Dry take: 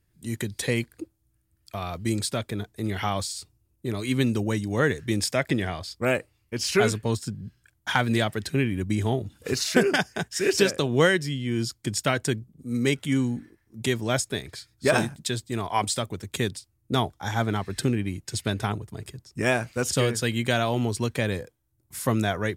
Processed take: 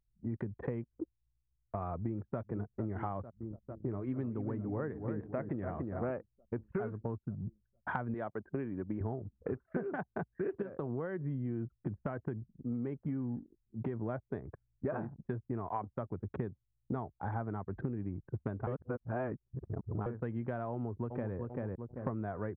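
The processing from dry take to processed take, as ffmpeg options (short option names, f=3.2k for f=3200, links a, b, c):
-filter_complex "[0:a]asplit=2[a][b];[b]afade=t=in:st=1.95:d=0.01,afade=t=out:st=2.4:d=0.01,aecho=0:1:450|900|1350|1800|2250|2700|3150|3600|4050|4500|4950|5400:0.199526|0.169597|0.144158|0.122534|0.104154|0.0885308|0.0752512|0.0639635|0.054369|0.0462137|0.0392816|0.0333894[c];[a][c]amix=inputs=2:normalize=0,asettb=1/sr,asplit=3[d][e][f];[d]atrim=end=3.224[g];[e]atrim=start=3.22:end=6.11,asetpts=PTS-STARTPTS,afade=t=in:d=0.004:c=qsin,afade=t=out:st=2.886:d=0.004:c=qsin,asplit=2[h][i];[i]adelay=289,lowpass=f=1.9k:p=1,volume=-7.5dB,asplit=2[j][k];[k]adelay=289,lowpass=f=1.9k:p=1,volume=0.41,asplit=2[l][m];[m]adelay=289,lowpass=f=1.9k:p=1,volume=0.41,asplit=2[n][o];[o]adelay=289,lowpass=f=1.9k:p=1,volume=0.41,asplit=2[p][q];[q]adelay=289,lowpass=f=1.9k:p=1,volume=0.41[r];[h][j][l][n][p][r]amix=inputs=6:normalize=0,atrim=end_sample=127449[s];[f]atrim=start=6.106[t];[g][s]acrossfade=d=0.004:c1=hsin:c2=qsin[u];[u][t]acrossfade=d=0.004:c1=qsin:c2=hsin,asettb=1/sr,asplit=3[v][w][x];[v]atrim=end=8.144[y];[w]atrim=start=8.14:end=9.01,asetpts=PTS-STARTPTS,afade=t=in:d=0.004:c=qsin,afade=t=out:st=0.866:d=0.004:c=qsin,highpass=f=400:p=1[z];[x]atrim=start=9.006[aa];[y][z]acrossfade=d=0.004:c1=hsin:c2=qsin[ab];[ab][aa]acrossfade=d=0.004:c1=qsin:c2=hsin,asettb=1/sr,asplit=3[ac][ad][ae];[ac]atrim=end=10.624[af];[ad]atrim=start=10.62:end=14.03,asetpts=PTS-STARTPTS,afade=t=in:d=0.004:c=qsin,afade=t=out:st=3.406:d=0.004:c=qsin,acompressor=threshold=-24dB:ratio=2.5:attack=3.2:release=140:knee=1:detection=peak[ag];[ae]atrim=start=14.026[ah];[af][ag]acrossfade=d=0.004:c1=hsin:c2=qsin[ai];[ai][ah]acrossfade=d=0.004:c1=qsin:c2=hsin,asplit=2[aj][ak];[ak]afade=t=in:st=20.71:d=0.01,afade=t=out:st=21.36:d=0.01,aecho=0:1:390|780|1170|1560:0.421697|0.147594|0.0516578|0.0180802[al];[aj][al]amix=inputs=2:normalize=0,asplit=3[am][an][ao];[am]atrim=end=18.672[ap];[an]atrim=start=18.668:end=20.062,asetpts=PTS-STARTPTS,areverse[aq];[ao]atrim=start=20.058[ar];[ap][aq]acrossfade=d=0.004:c1=hsin:c2=hsin[as];[as][ar]acrossfade=d=0.004:c1=hsin:c2=hsin,lowpass=f=1.3k:w=0.5412,lowpass=f=1.3k:w=1.3066,anlmdn=0.158,acompressor=threshold=-33dB:ratio=12"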